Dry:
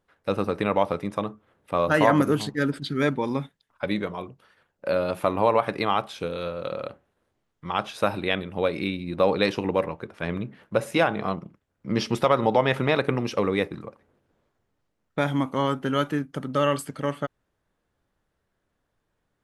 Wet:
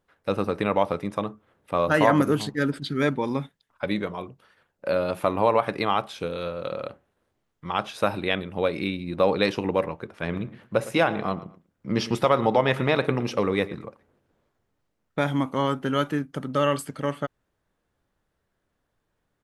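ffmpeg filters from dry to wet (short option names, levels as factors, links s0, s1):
-filter_complex "[0:a]asplit=3[s0][s1][s2];[s0]afade=t=out:st=10.28:d=0.02[s3];[s1]asplit=2[s4][s5];[s5]adelay=113,lowpass=f=3400:p=1,volume=0.158,asplit=2[s6][s7];[s7]adelay=113,lowpass=f=3400:p=1,volume=0.25[s8];[s4][s6][s8]amix=inputs=3:normalize=0,afade=t=in:st=10.28:d=0.02,afade=t=out:st=13.83:d=0.02[s9];[s2]afade=t=in:st=13.83:d=0.02[s10];[s3][s9][s10]amix=inputs=3:normalize=0"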